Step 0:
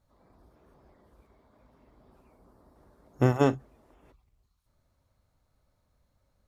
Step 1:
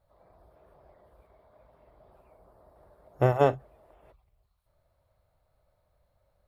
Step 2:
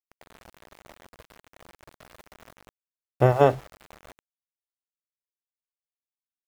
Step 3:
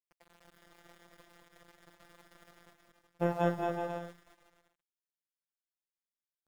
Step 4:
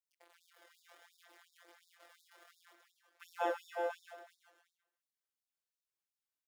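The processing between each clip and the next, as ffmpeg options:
ffmpeg -i in.wav -af "equalizer=frequency=250:width_type=o:width=0.67:gain=-11,equalizer=frequency=630:width_type=o:width=0.67:gain=9,equalizer=frequency=6300:width_type=o:width=0.67:gain=-11" out.wav
ffmpeg -i in.wav -af "areverse,acompressor=mode=upward:threshold=-39dB:ratio=2.5,areverse,aeval=exprs='val(0)*gte(abs(val(0)),0.00708)':channel_layout=same,volume=4dB" out.wav
ffmpeg -i in.wav -filter_complex "[0:a]afftfilt=real='hypot(re,im)*cos(PI*b)':imag='0':win_size=1024:overlap=0.75,asplit=2[link_01][link_02];[link_02]aecho=0:1:220|374|481.8|557.3|610.1:0.631|0.398|0.251|0.158|0.1[link_03];[link_01][link_03]amix=inputs=2:normalize=0,volume=-7.5dB" out.wav
ffmpeg -i in.wav -filter_complex "[0:a]flanger=delay=22.5:depth=2.8:speed=0.66,asplit=2[link_01][link_02];[link_02]adelay=138,lowpass=frequency=4200:poles=1,volume=-9dB,asplit=2[link_03][link_04];[link_04]adelay=138,lowpass=frequency=4200:poles=1,volume=0.36,asplit=2[link_05][link_06];[link_06]adelay=138,lowpass=frequency=4200:poles=1,volume=0.36,asplit=2[link_07][link_08];[link_08]adelay=138,lowpass=frequency=4200:poles=1,volume=0.36[link_09];[link_01][link_03][link_05][link_07][link_09]amix=inputs=5:normalize=0,afftfilt=real='re*gte(b*sr/1024,260*pow(3600/260,0.5+0.5*sin(2*PI*2.8*pts/sr)))':imag='im*gte(b*sr/1024,260*pow(3600/260,0.5+0.5*sin(2*PI*2.8*pts/sr)))':win_size=1024:overlap=0.75,volume=2dB" out.wav

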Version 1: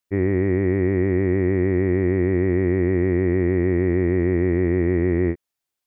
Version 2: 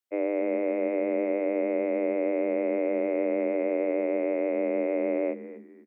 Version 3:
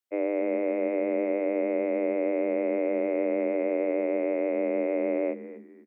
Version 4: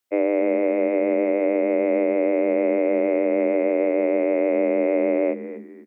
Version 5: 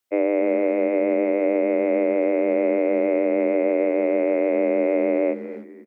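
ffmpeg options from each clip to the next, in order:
ffmpeg -i in.wav -filter_complex "[0:a]asplit=4[link_01][link_02][link_03][link_04];[link_02]adelay=252,afreqshift=-90,volume=-14dB[link_05];[link_03]adelay=504,afreqshift=-180,volume=-24.2dB[link_06];[link_04]adelay=756,afreqshift=-270,volume=-34.3dB[link_07];[link_01][link_05][link_06][link_07]amix=inputs=4:normalize=0,afreqshift=210,volume=-7.5dB" out.wav
ffmpeg -i in.wav -af anull out.wav
ffmpeg -i in.wav -af "alimiter=limit=-19.5dB:level=0:latency=1:release=299,volume=8.5dB" out.wav
ffmpeg -i in.wav -filter_complex "[0:a]asplit=2[link_01][link_02];[link_02]adelay=310,highpass=300,lowpass=3400,asoftclip=type=hard:threshold=-19.5dB,volume=-22dB[link_03];[link_01][link_03]amix=inputs=2:normalize=0" out.wav

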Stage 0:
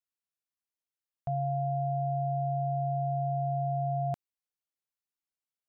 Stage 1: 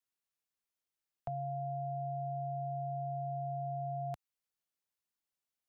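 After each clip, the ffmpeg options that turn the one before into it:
ffmpeg -i in.wav -filter_complex "[0:a]acrossover=split=97|780[link_01][link_02][link_03];[link_01]acompressor=threshold=-51dB:ratio=4[link_04];[link_02]acompressor=threshold=-46dB:ratio=4[link_05];[link_03]acompressor=threshold=-44dB:ratio=4[link_06];[link_04][link_05][link_06]amix=inputs=3:normalize=0,volume=1dB" out.wav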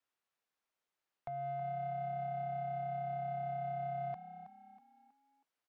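ffmpeg -i in.wav -filter_complex "[0:a]alimiter=level_in=11.5dB:limit=-24dB:level=0:latency=1:release=425,volume=-11.5dB,asplit=2[link_01][link_02];[link_02]highpass=frequency=720:poles=1,volume=14dB,asoftclip=type=tanh:threshold=-35dB[link_03];[link_01][link_03]amix=inputs=2:normalize=0,lowpass=frequency=1200:poles=1,volume=-6dB,asplit=2[link_04][link_05];[link_05]asplit=4[link_06][link_07][link_08][link_09];[link_06]adelay=321,afreqshift=33,volume=-12dB[link_10];[link_07]adelay=642,afreqshift=66,volume=-20dB[link_11];[link_08]adelay=963,afreqshift=99,volume=-27.9dB[link_12];[link_09]adelay=1284,afreqshift=132,volume=-35.9dB[link_13];[link_10][link_11][link_12][link_13]amix=inputs=4:normalize=0[link_14];[link_04][link_14]amix=inputs=2:normalize=0,volume=2dB" out.wav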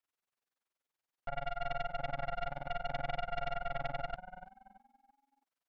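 ffmpeg -i in.wav -af "flanger=delay=9.8:depth=9.6:regen=-31:speed=0.58:shape=sinusoidal,tremolo=f=21:d=0.947,aeval=exprs='0.02*(cos(1*acos(clip(val(0)/0.02,-1,1)))-cos(1*PI/2))+0.00708*(cos(6*acos(clip(val(0)/0.02,-1,1)))-cos(6*PI/2))':channel_layout=same,volume=5.5dB" out.wav

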